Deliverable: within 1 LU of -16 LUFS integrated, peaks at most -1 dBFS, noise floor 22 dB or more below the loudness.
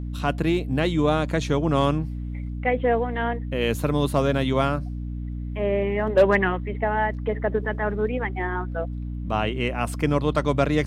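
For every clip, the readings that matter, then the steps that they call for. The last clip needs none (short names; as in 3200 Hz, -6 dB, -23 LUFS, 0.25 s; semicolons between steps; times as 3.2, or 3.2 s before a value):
hum 60 Hz; harmonics up to 300 Hz; hum level -28 dBFS; loudness -24.5 LUFS; peak -7.0 dBFS; loudness target -16.0 LUFS
-> de-hum 60 Hz, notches 5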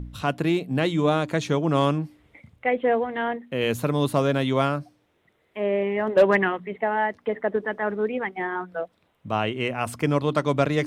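hum none; loudness -24.5 LUFS; peak -7.5 dBFS; loudness target -16.0 LUFS
-> gain +8.5 dB; limiter -1 dBFS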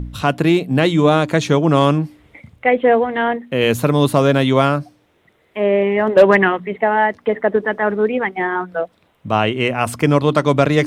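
loudness -16.5 LUFS; peak -1.0 dBFS; noise floor -59 dBFS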